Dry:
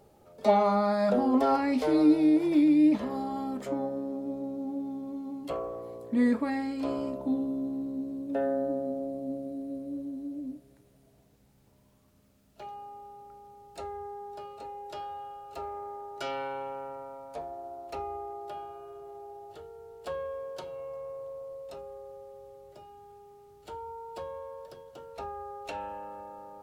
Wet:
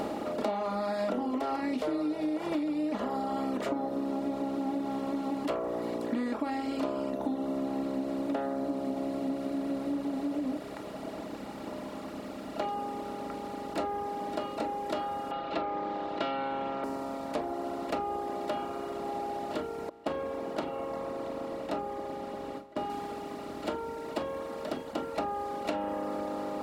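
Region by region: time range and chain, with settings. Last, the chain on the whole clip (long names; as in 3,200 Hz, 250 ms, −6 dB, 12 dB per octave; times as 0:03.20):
0:15.31–0:16.84: Chebyshev low-pass filter 3,700 Hz, order 4 + high-shelf EQ 2,300 Hz +9.5 dB + comb filter 5.9 ms, depth 56%
0:19.89–0:22.90: high-shelf EQ 3,700 Hz −11.5 dB + noise gate with hold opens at −39 dBFS, closes at −47 dBFS
whole clip: compressor on every frequency bin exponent 0.4; reverb reduction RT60 1.5 s; downward compressor 10 to 1, threshold −28 dBFS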